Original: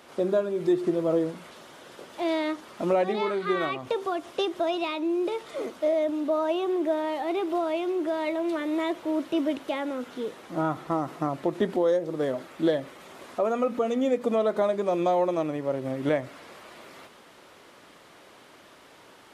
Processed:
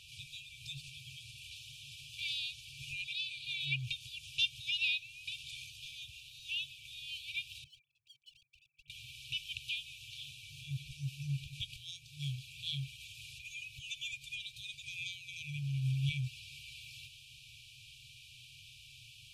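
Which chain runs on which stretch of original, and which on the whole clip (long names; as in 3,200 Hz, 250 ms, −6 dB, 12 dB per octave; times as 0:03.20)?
0:07.64–0:08.90: three sine waves on the formant tracks + pair of resonant band-passes 340 Hz, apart 1.2 octaves + hard clipping −39 dBFS
whole clip: high-shelf EQ 4,300 Hz −9.5 dB; brick-wall band-stop 140–2,300 Hz; level +7.5 dB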